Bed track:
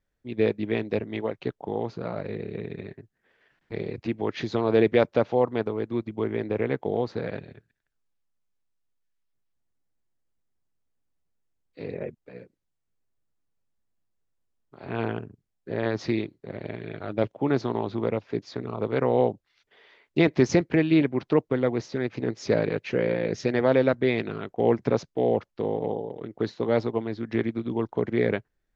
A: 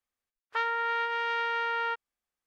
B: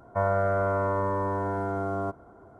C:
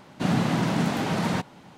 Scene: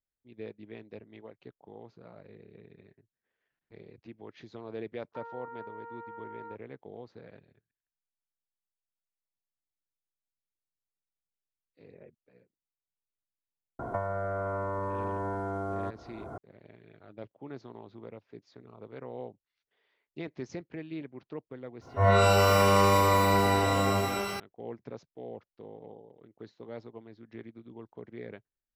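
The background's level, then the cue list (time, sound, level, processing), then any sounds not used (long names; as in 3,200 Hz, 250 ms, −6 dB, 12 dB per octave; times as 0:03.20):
bed track −19 dB
0:04.60: mix in A −10.5 dB + low-pass filter 1,100 Hz 24 dB per octave
0:13.79: mix in B −7 dB + multiband upward and downward compressor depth 100%
0:21.81: mix in B −6.5 dB + reverb with rising layers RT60 1.2 s, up +12 semitones, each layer −2 dB, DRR −10.5 dB
not used: C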